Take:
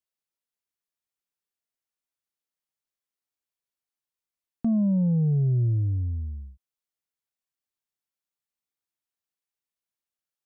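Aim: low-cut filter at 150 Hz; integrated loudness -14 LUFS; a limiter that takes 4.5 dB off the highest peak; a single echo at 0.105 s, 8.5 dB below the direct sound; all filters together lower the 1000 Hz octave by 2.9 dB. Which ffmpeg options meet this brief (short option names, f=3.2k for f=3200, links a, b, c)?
-af "highpass=150,equalizer=f=1k:t=o:g=-5,alimiter=limit=-23dB:level=0:latency=1,aecho=1:1:105:0.376,volume=15.5dB"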